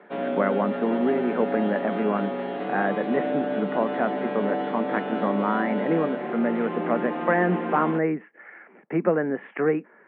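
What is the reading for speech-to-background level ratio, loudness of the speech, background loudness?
3.0 dB, −26.5 LKFS, −29.5 LKFS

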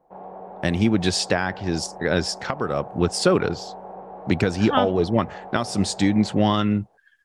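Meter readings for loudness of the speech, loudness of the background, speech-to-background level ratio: −22.5 LKFS, −39.0 LKFS, 16.5 dB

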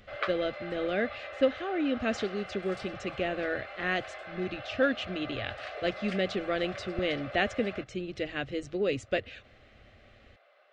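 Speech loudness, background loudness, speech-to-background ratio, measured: −32.5 LKFS, −41.5 LKFS, 9.0 dB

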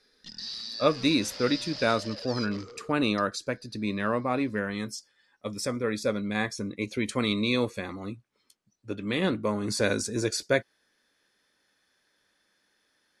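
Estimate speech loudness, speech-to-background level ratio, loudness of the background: −29.0 LKFS, 9.0 dB, −38.0 LKFS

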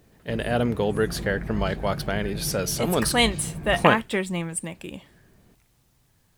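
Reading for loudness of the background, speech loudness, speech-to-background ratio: −35.0 LKFS, −24.5 LKFS, 10.5 dB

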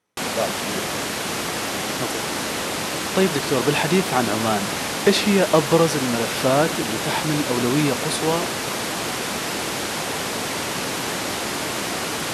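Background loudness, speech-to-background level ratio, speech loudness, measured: −24.5 LKFS, 2.5 dB, −22.0 LKFS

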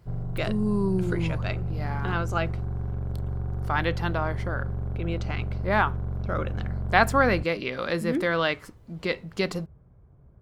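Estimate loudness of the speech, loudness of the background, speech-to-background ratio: −28.0 LKFS, −32.5 LKFS, 4.5 dB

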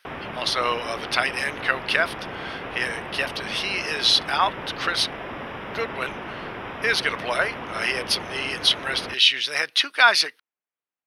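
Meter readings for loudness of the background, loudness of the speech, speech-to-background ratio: −34.0 LKFS, −22.5 LKFS, 11.5 dB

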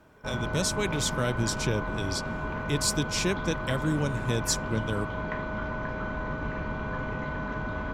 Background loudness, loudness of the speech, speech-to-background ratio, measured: −33.5 LKFS, −30.0 LKFS, 3.5 dB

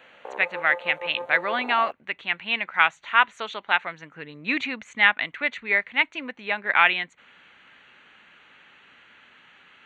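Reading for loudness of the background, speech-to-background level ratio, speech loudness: −36.5 LKFS, 13.0 dB, −23.5 LKFS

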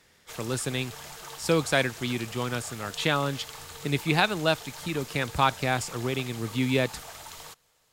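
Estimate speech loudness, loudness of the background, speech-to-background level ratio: −28.0 LKFS, −41.5 LKFS, 13.5 dB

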